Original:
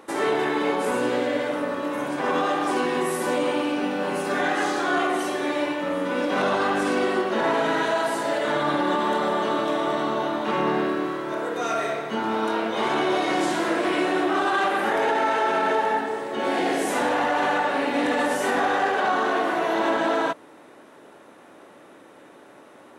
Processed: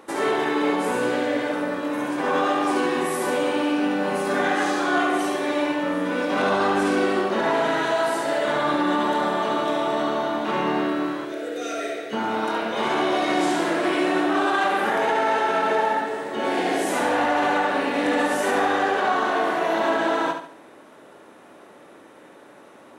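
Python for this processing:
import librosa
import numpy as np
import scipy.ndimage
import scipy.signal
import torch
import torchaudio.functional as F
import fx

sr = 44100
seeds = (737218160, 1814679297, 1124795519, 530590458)

p1 = fx.fixed_phaser(x, sr, hz=400.0, stages=4, at=(11.25, 12.13))
y = p1 + fx.echo_feedback(p1, sr, ms=71, feedback_pct=39, wet_db=-7, dry=0)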